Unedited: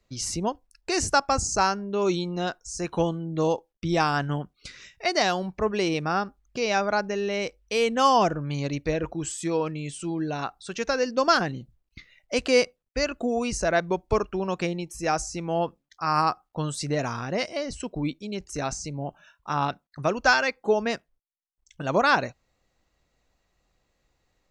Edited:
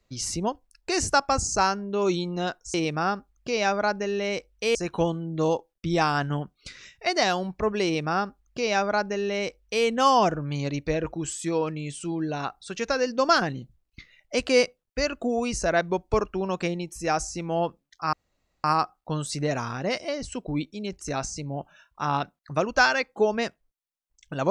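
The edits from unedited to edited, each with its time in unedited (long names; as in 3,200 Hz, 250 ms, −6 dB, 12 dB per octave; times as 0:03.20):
0:05.83–0:07.84: duplicate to 0:02.74
0:16.12: splice in room tone 0.51 s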